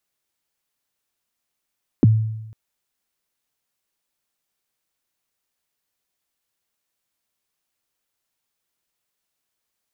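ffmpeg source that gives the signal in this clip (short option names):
-f lavfi -i "aevalsrc='0.422*pow(10,-3*t/0.96)*sin(2*PI*(370*0.023/log(110/370)*(exp(log(110/370)*min(t,0.023)/0.023)-1)+110*max(t-0.023,0)))':d=0.5:s=44100"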